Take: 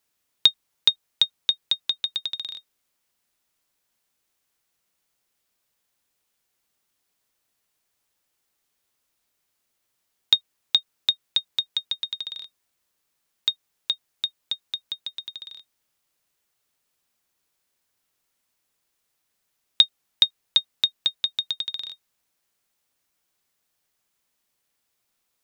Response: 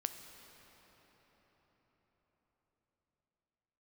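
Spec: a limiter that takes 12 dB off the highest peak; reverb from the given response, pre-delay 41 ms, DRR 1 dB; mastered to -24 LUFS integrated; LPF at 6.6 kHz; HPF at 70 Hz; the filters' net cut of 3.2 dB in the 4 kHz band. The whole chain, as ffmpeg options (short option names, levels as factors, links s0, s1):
-filter_complex "[0:a]highpass=70,lowpass=6600,equalizer=f=4000:t=o:g=-3,alimiter=limit=0.15:level=0:latency=1,asplit=2[s0][s1];[1:a]atrim=start_sample=2205,adelay=41[s2];[s1][s2]afir=irnorm=-1:irlink=0,volume=0.891[s3];[s0][s3]amix=inputs=2:normalize=0,volume=2.24"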